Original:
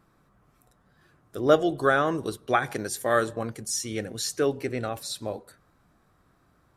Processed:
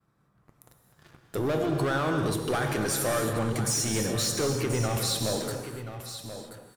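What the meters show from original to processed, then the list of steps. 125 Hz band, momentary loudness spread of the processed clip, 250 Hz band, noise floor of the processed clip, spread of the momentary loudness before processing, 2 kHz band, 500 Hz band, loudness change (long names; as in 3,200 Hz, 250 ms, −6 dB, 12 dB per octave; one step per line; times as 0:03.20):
+7.5 dB, 12 LU, +1.0 dB, −67 dBFS, 12 LU, −3.5 dB, −3.5 dB, −1.5 dB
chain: high-pass filter 41 Hz 12 dB per octave
downward expander −58 dBFS
parametric band 130 Hz +6.5 dB 0.8 octaves
downward compressor 3 to 1, threshold −30 dBFS, peak gain reduction 13 dB
leveller curve on the samples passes 3
brickwall limiter −28 dBFS, peak gain reduction 10 dB
single-tap delay 1,032 ms −11 dB
reverb whose tail is shaped and stops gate 320 ms flat, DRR 4 dB
level +4.5 dB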